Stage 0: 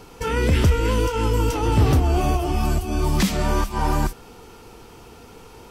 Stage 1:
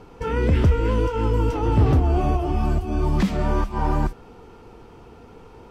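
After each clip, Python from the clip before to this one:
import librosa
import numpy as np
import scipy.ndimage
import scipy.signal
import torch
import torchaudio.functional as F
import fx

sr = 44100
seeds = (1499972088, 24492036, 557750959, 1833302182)

y = fx.lowpass(x, sr, hz=1300.0, slope=6)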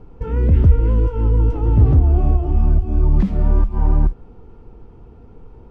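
y = fx.tilt_eq(x, sr, slope=-3.5)
y = y * 10.0 ** (-7.0 / 20.0)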